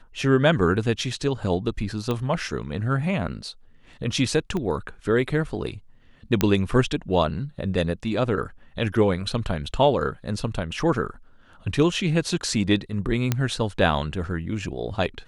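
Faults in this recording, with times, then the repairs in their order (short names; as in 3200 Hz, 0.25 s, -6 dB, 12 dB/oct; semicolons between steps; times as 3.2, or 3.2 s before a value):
2.11 pop -14 dBFS
4.57 pop -17 dBFS
6.41 pop -5 dBFS
13.32 pop -7 dBFS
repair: de-click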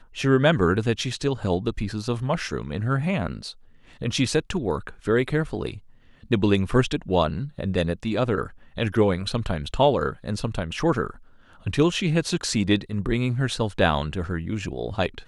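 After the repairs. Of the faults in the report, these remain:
4.57 pop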